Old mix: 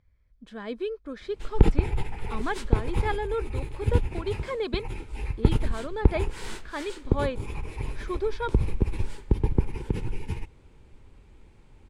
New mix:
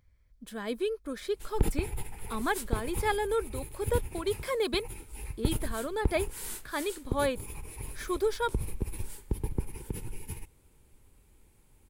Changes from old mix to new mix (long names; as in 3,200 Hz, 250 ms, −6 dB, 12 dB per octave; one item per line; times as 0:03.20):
background −9.0 dB
master: remove high-frequency loss of the air 140 metres